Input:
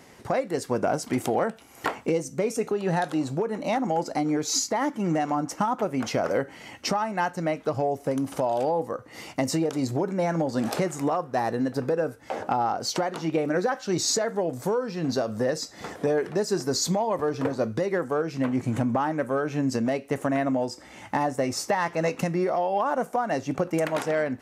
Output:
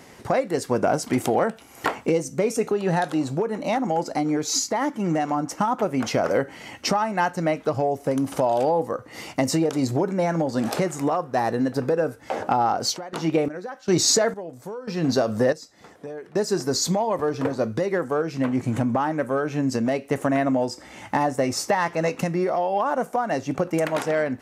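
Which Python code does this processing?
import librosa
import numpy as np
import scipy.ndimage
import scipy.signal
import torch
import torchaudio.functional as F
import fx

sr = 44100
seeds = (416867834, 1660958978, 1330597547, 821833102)

y = fx.chopper(x, sr, hz=fx.line((12.94, 1.6), (16.45, 0.51)), depth_pct=80, duty_pct=50, at=(12.94, 16.45), fade=0.02)
y = fx.rider(y, sr, range_db=10, speed_s=2.0)
y = y * 10.0 ** (2.5 / 20.0)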